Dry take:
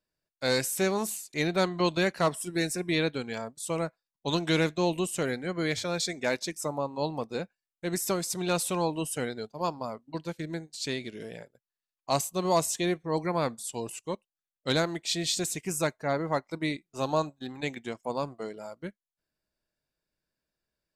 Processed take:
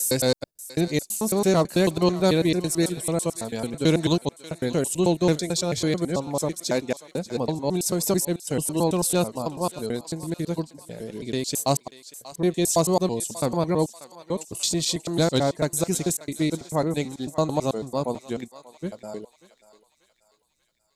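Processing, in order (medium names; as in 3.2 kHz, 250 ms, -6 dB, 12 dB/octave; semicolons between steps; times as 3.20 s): slices played last to first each 110 ms, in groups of 7; peaking EQ 1.8 kHz -11.5 dB 2.2 oct; on a send: thinning echo 587 ms, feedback 55%, high-pass 1 kHz, level -14 dB; on the sum: trim +8.5 dB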